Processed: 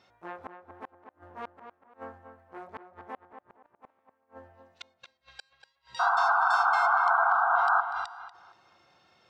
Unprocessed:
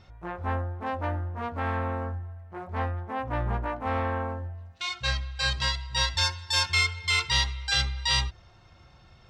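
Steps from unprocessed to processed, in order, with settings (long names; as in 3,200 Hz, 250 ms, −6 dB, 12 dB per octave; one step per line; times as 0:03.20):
high-pass filter 300 Hz 12 dB per octave
0:05.81–0:07.07: downward compressor 3 to 1, threshold −42 dBFS, peak gain reduction 16 dB
gate with flip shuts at −23 dBFS, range −40 dB
0:05.99–0:07.81: sound drawn into the spectrogram noise 670–1,600 Hz −20 dBFS
on a send: tape delay 240 ms, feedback 31%, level −7.5 dB, low-pass 2,300 Hz
on the sum: level −4 dB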